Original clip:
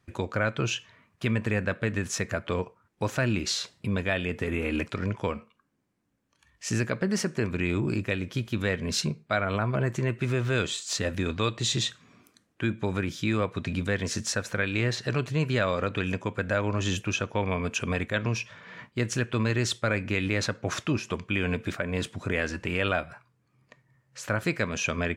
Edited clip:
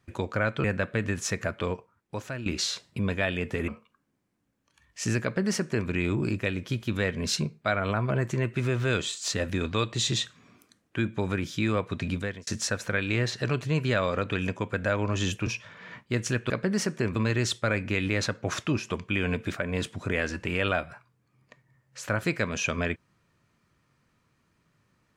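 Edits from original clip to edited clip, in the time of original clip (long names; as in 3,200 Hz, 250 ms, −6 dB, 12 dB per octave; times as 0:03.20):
0:00.64–0:01.52: remove
0:02.42–0:03.34: fade out, to −12 dB
0:04.56–0:05.33: remove
0:06.88–0:07.54: duplicate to 0:19.36
0:13.77–0:14.12: fade out
0:17.12–0:18.33: remove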